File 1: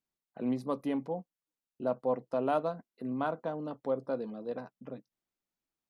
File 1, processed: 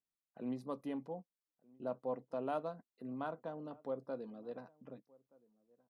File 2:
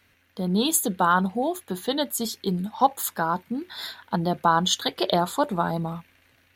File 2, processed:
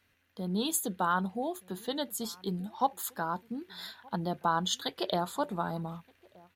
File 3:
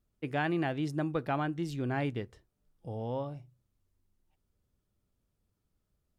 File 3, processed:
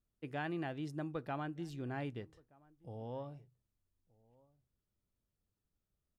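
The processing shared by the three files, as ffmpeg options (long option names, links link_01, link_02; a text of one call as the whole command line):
ffmpeg -i in.wav -filter_complex "[0:a]bandreject=frequency=2200:width=24,asplit=2[link_01][link_02];[link_02]adelay=1224,volume=-25dB,highshelf=frequency=4000:gain=-27.6[link_03];[link_01][link_03]amix=inputs=2:normalize=0,volume=-8.5dB" out.wav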